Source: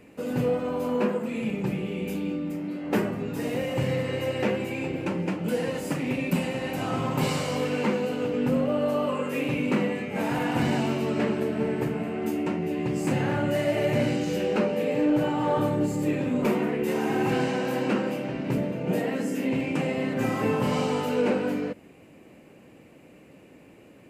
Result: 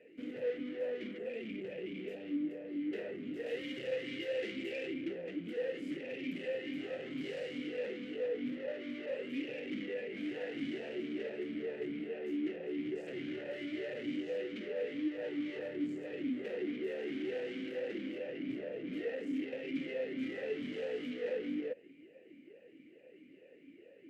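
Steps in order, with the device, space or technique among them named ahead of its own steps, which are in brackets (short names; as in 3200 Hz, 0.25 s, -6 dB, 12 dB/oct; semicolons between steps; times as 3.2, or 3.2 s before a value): talk box (tube stage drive 35 dB, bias 0.75; vowel sweep e-i 2.3 Hz); 3.46–4.94 high shelf 3000 Hz +9.5 dB; gain +7 dB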